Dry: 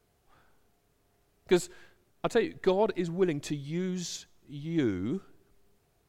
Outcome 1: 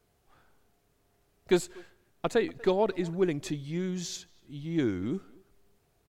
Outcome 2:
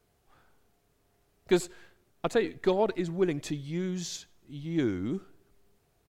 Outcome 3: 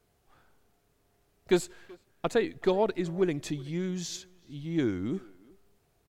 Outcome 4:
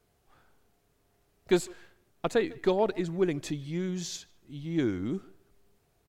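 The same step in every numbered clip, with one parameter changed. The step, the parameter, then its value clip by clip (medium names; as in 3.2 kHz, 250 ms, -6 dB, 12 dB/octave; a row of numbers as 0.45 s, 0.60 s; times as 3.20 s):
speakerphone echo, time: 240 ms, 90 ms, 380 ms, 150 ms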